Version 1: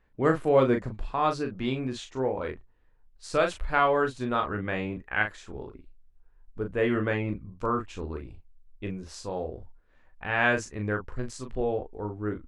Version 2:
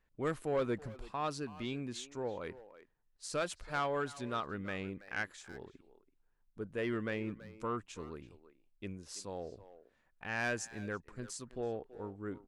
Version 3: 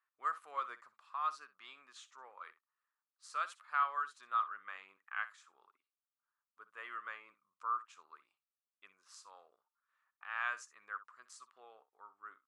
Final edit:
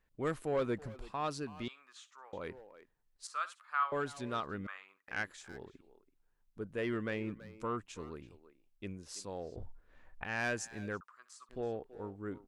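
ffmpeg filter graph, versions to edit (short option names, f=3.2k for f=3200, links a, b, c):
-filter_complex "[2:a]asplit=4[a][b][c][d];[1:a]asplit=6[e][f][g][h][i][j];[e]atrim=end=1.682[k];[a]atrim=start=1.678:end=2.332[l];[f]atrim=start=2.328:end=3.272[m];[b]atrim=start=3.268:end=3.922[n];[g]atrim=start=3.918:end=4.672[o];[c]atrim=start=4.668:end=5.082[p];[h]atrim=start=5.078:end=9.562[q];[0:a]atrim=start=9.558:end=10.242[r];[i]atrim=start=10.238:end=11.012[s];[d]atrim=start=11.008:end=11.492[t];[j]atrim=start=11.488[u];[k][l]acrossfade=d=0.004:c1=hsin:c2=hsin[v];[v][m]acrossfade=d=0.004:c1=hsin:c2=hsin[w];[w][n]acrossfade=d=0.004:c1=hsin:c2=hsin[x];[x][o]acrossfade=d=0.004:c1=hsin:c2=hsin[y];[y][p]acrossfade=d=0.004:c1=hsin:c2=hsin[z];[z][q]acrossfade=d=0.004:c1=hsin:c2=hsin[aa];[aa][r]acrossfade=d=0.004:c1=hsin:c2=hsin[ab];[ab][s]acrossfade=d=0.004:c1=hsin:c2=hsin[ac];[ac][t]acrossfade=d=0.004:c1=hsin:c2=hsin[ad];[ad][u]acrossfade=d=0.004:c1=hsin:c2=hsin"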